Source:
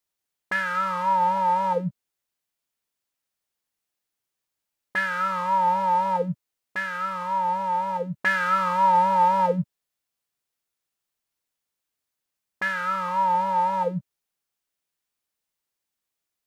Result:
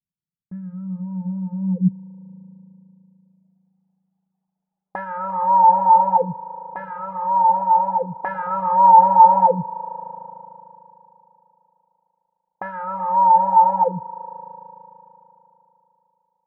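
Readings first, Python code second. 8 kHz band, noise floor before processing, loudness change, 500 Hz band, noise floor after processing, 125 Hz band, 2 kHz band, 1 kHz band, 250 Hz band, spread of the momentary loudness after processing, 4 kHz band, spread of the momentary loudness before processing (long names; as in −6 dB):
can't be measured, −85 dBFS, +7.0 dB, +3.0 dB, −82 dBFS, +5.5 dB, −12.5 dB, +7.0 dB, +6.5 dB, 21 LU, below −25 dB, 10 LU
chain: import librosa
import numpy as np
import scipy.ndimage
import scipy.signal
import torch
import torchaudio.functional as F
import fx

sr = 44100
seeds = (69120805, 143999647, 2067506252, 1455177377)

y = fx.filter_sweep_lowpass(x, sr, from_hz=170.0, to_hz=810.0, start_s=1.56, end_s=3.8, q=6.7)
y = fx.rev_spring(y, sr, rt60_s=3.3, pass_ms=(37,), chirp_ms=75, drr_db=9.0)
y = fx.dereverb_blind(y, sr, rt60_s=0.91)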